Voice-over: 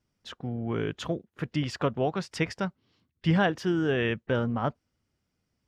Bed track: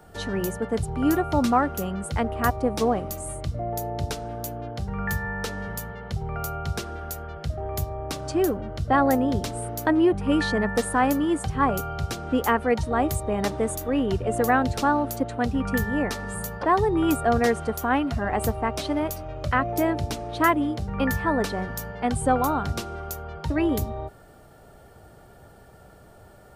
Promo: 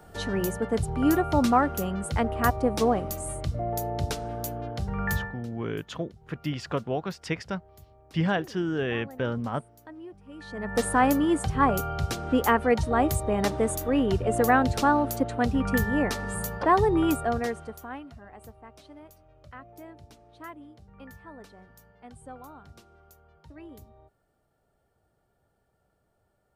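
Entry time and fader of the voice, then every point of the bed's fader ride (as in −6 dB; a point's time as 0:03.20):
4.90 s, −2.0 dB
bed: 0:05.21 −0.5 dB
0:05.46 −24 dB
0:10.33 −24 dB
0:10.82 0 dB
0:16.96 0 dB
0:18.32 −22.5 dB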